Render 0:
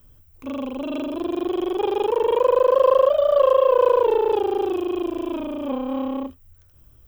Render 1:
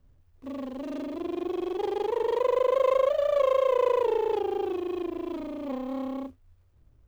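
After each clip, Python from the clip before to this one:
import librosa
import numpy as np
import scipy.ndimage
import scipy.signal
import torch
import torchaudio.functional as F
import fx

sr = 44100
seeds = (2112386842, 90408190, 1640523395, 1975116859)

y = scipy.signal.medfilt(x, 25)
y = F.gain(torch.from_numpy(y), -6.5).numpy()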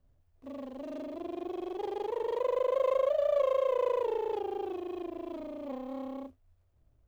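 y = fx.peak_eq(x, sr, hz=660.0, db=7.5, octaves=0.45)
y = F.gain(torch.from_numpy(y), -7.5).numpy()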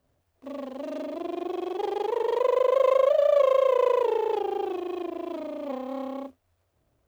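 y = fx.highpass(x, sr, hz=330.0, slope=6)
y = F.gain(torch.from_numpy(y), 8.5).numpy()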